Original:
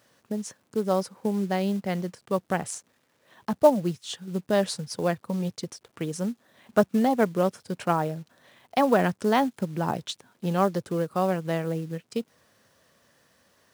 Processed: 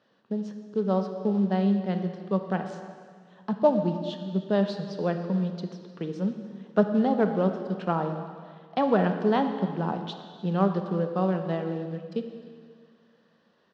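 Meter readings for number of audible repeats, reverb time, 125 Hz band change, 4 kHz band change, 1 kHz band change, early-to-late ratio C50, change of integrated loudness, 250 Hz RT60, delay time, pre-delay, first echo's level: 1, 1.9 s, +1.5 dB, −5.5 dB, −2.5 dB, 7.5 dB, −0.5 dB, 2.0 s, 305 ms, 24 ms, −21.0 dB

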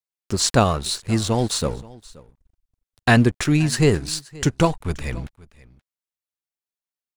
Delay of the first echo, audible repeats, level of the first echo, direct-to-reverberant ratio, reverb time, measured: 527 ms, 1, −22.0 dB, no reverb audible, no reverb audible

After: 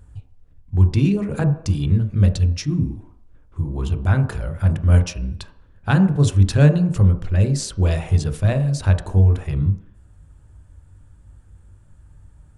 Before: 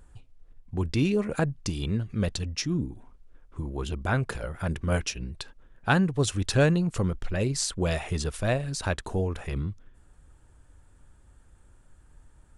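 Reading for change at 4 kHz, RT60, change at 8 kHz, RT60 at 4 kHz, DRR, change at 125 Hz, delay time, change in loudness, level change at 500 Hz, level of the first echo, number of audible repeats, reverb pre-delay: 0.0 dB, 0.70 s, 0.0 dB, 0.70 s, 8.0 dB, +12.5 dB, no echo audible, +9.5 dB, +2.0 dB, no echo audible, no echo audible, 20 ms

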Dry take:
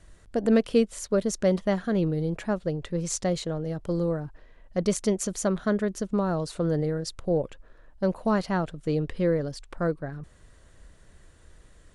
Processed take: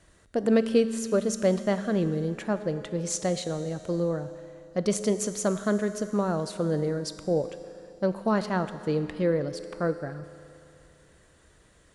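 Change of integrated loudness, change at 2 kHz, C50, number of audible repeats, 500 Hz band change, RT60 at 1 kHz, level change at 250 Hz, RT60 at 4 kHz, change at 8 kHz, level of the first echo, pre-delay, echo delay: −0.5 dB, +0.5 dB, 11.5 dB, no echo audible, 0.0 dB, 2.7 s, −1.0 dB, 2.7 s, +0.5 dB, no echo audible, 10 ms, no echo audible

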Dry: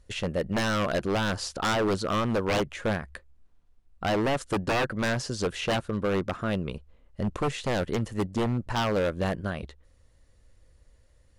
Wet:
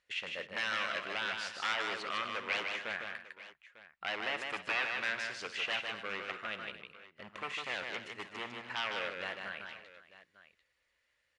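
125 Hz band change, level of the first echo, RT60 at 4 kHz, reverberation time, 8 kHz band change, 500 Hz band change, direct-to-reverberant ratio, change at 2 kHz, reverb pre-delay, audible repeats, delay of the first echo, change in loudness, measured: −28.5 dB, −15.5 dB, no reverb audible, no reverb audible, −12.5 dB, −16.0 dB, no reverb audible, −1.5 dB, no reverb audible, 5, 55 ms, −8.0 dB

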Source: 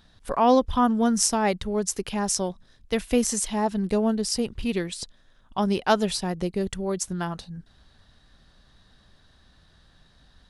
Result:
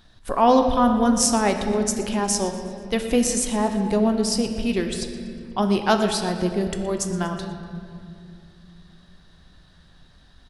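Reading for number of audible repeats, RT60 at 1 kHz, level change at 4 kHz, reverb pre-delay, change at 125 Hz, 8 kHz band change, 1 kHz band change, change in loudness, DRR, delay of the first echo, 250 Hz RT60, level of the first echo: 1, 2.1 s, +3.0 dB, 3 ms, +3.5 dB, +2.5 dB, +3.0 dB, +3.0 dB, 4.5 dB, 120 ms, 3.9 s, −16.5 dB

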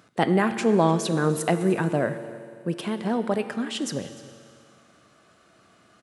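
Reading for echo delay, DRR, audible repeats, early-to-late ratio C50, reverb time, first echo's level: 300 ms, 9.5 dB, 1, 10.5 dB, 2.3 s, −19.5 dB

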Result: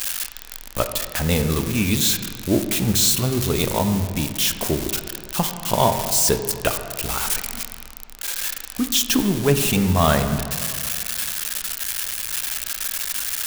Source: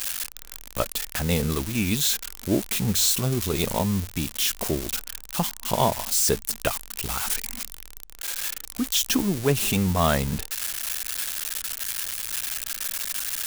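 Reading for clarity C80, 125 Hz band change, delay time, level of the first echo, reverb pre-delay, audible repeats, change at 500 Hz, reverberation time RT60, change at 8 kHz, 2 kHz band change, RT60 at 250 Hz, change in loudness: 9.0 dB, +4.5 dB, no echo audible, no echo audible, 17 ms, no echo audible, +4.5 dB, 2.2 s, +3.5 dB, +4.0 dB, 2.3 s, +4.0 dB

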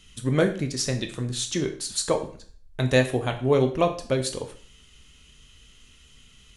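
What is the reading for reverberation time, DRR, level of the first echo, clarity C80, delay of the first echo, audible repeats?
0.45 s, 5.0 dB, no echo audible, 14.5 dB, no echo audible, no echo audible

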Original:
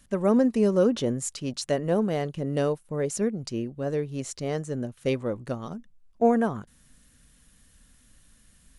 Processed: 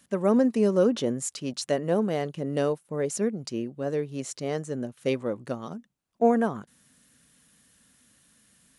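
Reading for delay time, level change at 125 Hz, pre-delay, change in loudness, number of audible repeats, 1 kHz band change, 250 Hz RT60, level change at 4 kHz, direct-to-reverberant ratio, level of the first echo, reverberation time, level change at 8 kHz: no echo audible, −3.0 dB, no reverb audible, −0.5 dB, no echo audible, 0.0 dB, no reverb audible, 0.0 dB, no reverb audible, no echo audible, no reverb audible, 0.0 dB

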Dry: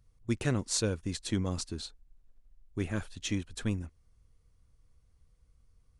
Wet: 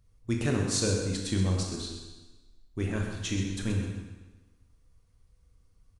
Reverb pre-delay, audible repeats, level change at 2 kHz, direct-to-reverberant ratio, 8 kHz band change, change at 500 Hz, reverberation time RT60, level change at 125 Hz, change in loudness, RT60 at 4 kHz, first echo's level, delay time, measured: 20 ms, 1, +3.0 dB, 0.0 dB, +3.0 dB, +4.0 dB, 1.2 s, +5.0 dB, +3.5 dB, 1.2 s, −9.0 dB, 128 ms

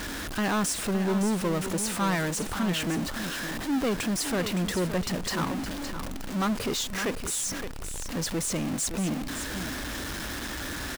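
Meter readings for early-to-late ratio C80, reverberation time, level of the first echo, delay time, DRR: no reverb audible, no reverb audible, −9.5 dB, 565 ms, no reverb audible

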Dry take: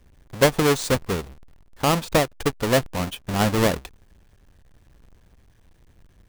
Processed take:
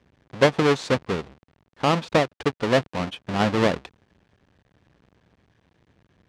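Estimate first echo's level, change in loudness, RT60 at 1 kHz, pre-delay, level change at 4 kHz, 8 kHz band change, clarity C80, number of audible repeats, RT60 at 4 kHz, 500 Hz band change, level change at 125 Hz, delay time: no echo audible, −1.0 dB, no reverb audible, no reverb audible, −2.0 dB, −10.5 dB, no reverb audible, no echo audible, no reverb audible, 0.0 dB, −2.5 dB, no echo audible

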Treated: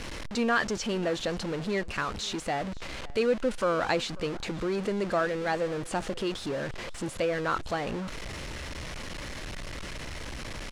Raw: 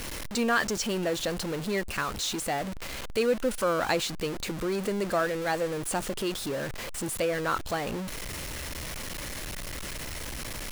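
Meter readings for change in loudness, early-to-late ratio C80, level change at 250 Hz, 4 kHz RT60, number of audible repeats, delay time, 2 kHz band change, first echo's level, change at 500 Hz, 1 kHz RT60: −1.0 dB, no reverb audible, 0.0 dB, no reverb audible, 1, 541 ms, −0.5 dB, −22.0 dB, 0.0 dB, no reverb audible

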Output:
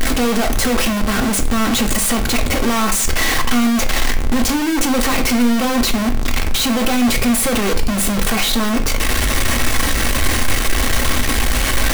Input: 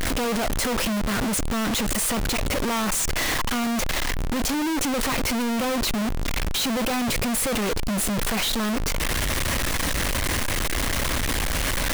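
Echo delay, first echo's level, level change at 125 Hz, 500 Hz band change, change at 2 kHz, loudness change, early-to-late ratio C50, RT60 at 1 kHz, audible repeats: no echo audible, no echo audible, +6.5 dB, +6.5 dB, +7.0 dB, +7.5 dB, 13.0 dB, 0.40 s, no echo audible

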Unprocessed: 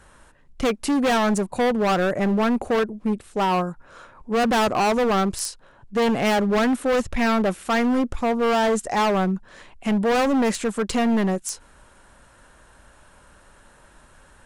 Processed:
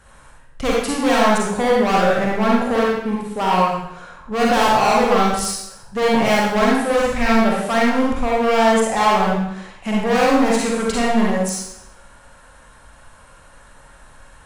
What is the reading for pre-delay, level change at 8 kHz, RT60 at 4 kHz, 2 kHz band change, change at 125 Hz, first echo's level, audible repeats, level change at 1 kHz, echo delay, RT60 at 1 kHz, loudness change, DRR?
38 ms, +5.0 dB, 0.75 s, +5.5 dB, +2.5 dB, no echo audible, no echo audible, +6.0 dB, no echo audible, 0.80 s, +4.0 dB, −4.5 dB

